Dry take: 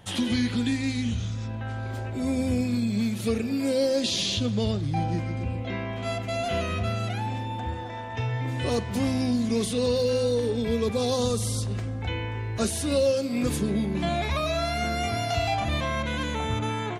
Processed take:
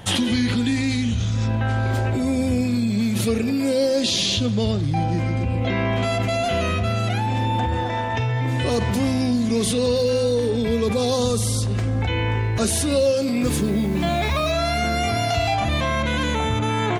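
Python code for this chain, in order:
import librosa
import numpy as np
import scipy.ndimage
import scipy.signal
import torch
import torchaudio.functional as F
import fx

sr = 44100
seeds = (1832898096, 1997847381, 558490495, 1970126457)

p1 = fx.over_compress(x, sr, threshold_db=-32.0, ratio=-0.5)
p2 = x + F.gain(torch.from_numpy(p1), -2.5).numpy()
p3 = fx.quant_dither(p2, sr, seeds[0], bits=8, dither='none', at=(13.43, 14.52))
y = F.gain(torch.from_numpy(p3), 3.5).numpy()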